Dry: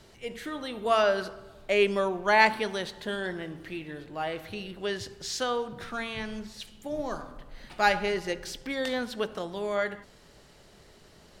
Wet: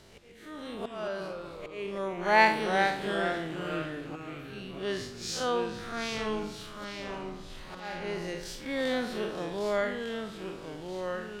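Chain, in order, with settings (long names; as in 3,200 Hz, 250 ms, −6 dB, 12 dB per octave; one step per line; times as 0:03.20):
spectrum smeared in time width 108 ms
volume swells 751 ms
delay with pitch and tempo change per echo 118 ms, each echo −2 semitones, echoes 3, each echo −6 dB
level +1.5 dB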